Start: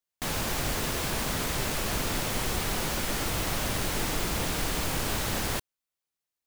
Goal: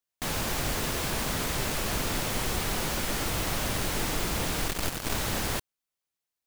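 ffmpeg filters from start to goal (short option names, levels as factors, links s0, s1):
-filter_complex "[0:a]asettb=1/sr,asplit=3[s0][s1][s2];[s0]atrim=end=4.684[s3];[s1]atrim=start=4.68:end=5.15,asetpts=PTS-STARTPTS,afade=t=in:d=0.004:c=qsin,afade=t=out:st=0.466:d=0.004:c=qsin,aeval=exprs='0.141*(cos(1*acos(clip(val(0)/0.141,-1,1)))-cos(1*PI/2))+0.0224*(cos(3*acos(clip(val(0)/0.141,-1,1)))-cos(3*PI/2))+0.0282*(cos(4*acos(clip(val(0)/0.141,-1,1)))-cos(4*PI/2))':c=same[s4];[s2]atrim=start=5.146[s5];[s3][s4]acrossfade=d=0.004:c1=hsin:c2=qsin[s6];[s6][s5]acrossfade=d=0.004:c1=qsin:c2=hsin"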